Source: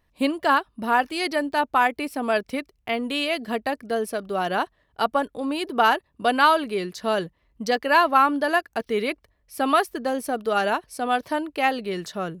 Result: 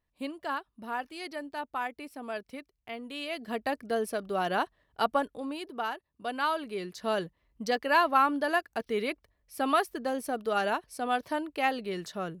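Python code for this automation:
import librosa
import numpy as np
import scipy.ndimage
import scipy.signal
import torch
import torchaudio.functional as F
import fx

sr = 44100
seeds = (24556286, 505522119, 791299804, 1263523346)

y = fx.gain(x, sr, db=fx.line((3.09, -14.0), (3.71, -4.5), (5.16, -4.5), (5.96, -16.5), (7.1, -6.0)))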